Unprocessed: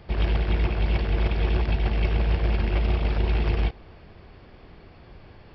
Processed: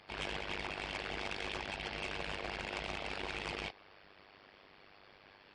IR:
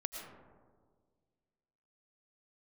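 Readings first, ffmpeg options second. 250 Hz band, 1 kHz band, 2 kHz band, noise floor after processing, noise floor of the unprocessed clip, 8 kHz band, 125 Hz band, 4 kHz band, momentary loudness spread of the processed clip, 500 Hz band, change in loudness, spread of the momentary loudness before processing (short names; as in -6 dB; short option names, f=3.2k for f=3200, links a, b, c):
-16.0 dB, -7.0 dB, -4.5 dB, -61 dBFS, -49 dBFS, n/a, -27.0 dB, -3.5 dB, 20 LU, -11.5 dB, -14.5 dB, 1 LU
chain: -af "aeval=exprs='0.282*(cos(1*acos(clip(val(0)/0.282,-1,1)))-cos(1*PI/2))+0.0282*(cos(4*acos(clip(val(0)/0.282,-1,1)))-cos(4*PI/2))+0.00562*(cos(8*acos(clip(val(0)/0.282,-1,1)))-cos(8*PI/2))':c=same,highpass=f=1.3k:p=1,asoftclip=type=hard:threshold=-33dB,tremolo=f=99:d=0.889,volume=2.5dB" -ar 22050 -c:a libmp3lame -b:a 56k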